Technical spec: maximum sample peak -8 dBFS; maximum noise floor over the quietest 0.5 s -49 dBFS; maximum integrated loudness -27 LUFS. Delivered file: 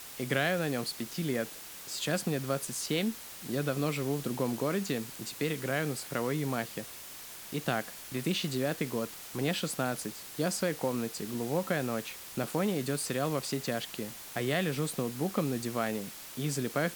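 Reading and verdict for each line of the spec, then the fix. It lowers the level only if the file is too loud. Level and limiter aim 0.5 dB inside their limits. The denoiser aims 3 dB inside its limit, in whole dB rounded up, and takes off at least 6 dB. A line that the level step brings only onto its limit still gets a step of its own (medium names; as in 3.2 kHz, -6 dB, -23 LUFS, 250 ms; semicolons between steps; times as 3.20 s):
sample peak -14.5 dBFS: pass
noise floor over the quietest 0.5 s -46 dBFS: fail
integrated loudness -33.0 LUFS: pass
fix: noise reduction 6 dB, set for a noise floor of -46 dBFS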